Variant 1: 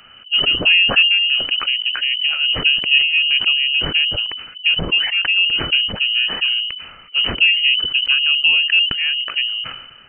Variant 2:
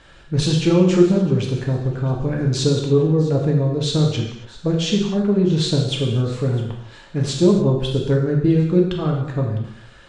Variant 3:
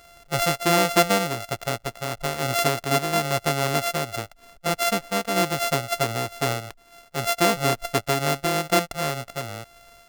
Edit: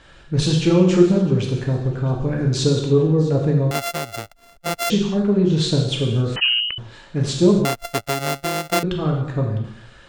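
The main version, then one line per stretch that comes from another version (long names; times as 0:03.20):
2
0:03.71–0:04.90: punch in from 3
0:06.36–0:06.78: punch in from 1
0:07.65–0:08.83: punch in from 3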